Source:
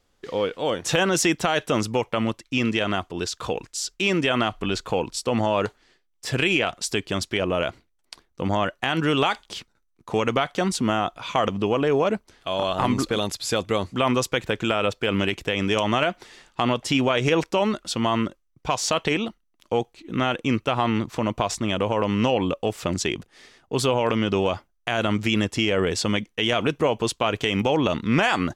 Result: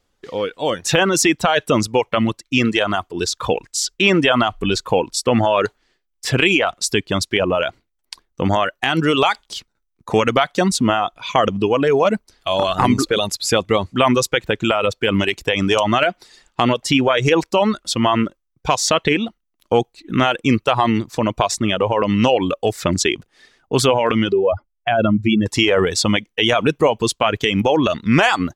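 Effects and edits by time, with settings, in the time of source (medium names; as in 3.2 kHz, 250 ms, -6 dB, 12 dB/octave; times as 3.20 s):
24.32–25.46 s: spectral contrast enhancement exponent 1.9
whole clip: reverb removal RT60 1.6 s; level rider gain up to 10 dB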